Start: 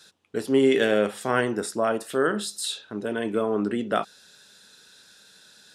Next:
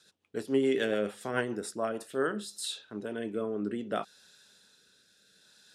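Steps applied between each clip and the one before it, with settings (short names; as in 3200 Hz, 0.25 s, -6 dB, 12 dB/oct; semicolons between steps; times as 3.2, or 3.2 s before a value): rotary speaker horn 7 Hz, later 0.65 Hz, at 1.7; gain -6 dB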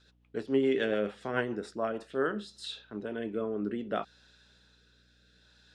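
LPF 4000 Hz 12 dB/oct; hum 60 Hz, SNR 33 dB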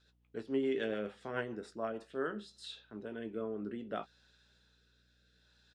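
doubler 18 ms -12 dB; gain -7 dB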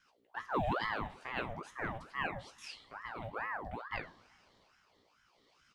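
two-slope reverb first 0.47 s, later 3 s, from -20 dB, DRR 8 dB; short-mantissa float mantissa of 6-bit; ring modulator with a swept carrier 930 Hz, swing 65%, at 2.3 Hz; gain +1.5 dB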